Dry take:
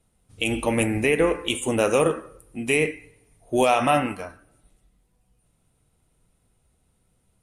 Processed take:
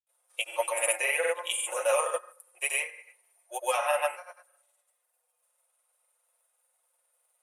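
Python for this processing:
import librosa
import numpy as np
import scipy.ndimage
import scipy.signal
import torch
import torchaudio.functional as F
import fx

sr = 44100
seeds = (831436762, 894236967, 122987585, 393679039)

p1 = fx.rider(x, sr, range_db=10, speed_s=2.0)
p2 = scipy.signal.sosfilt(scipy.signal.butter(8, 550.0, 'highpass', fs=sr, output='sos'), p1)
p3 = fx.peak_eq(p2, sr, hz=4500.0, db=-7.5, octaves=2.0)
p4 = p3 + 0.97 * np.pad(p3, (int(5.6 * sr / 1000.0), 0))[:len(p3)]
p5 = p4 + fx.echo_single(p4, sr, ms=73, db=-12.5, dry=0)
p6 = fx.granulator(p5, sr, seeds[0], grain_ms=100.0, per_s=20.0, spray_ms=100.0, spread_st=0)
p7 = fx.high_shelf(p6, sr, hz=7200.0, db=11.0)
p8 = fx.notch(p7, sr, hz=730.0, q=12.0)
y = p8 * librosa.db_to_amplitude(-2.5)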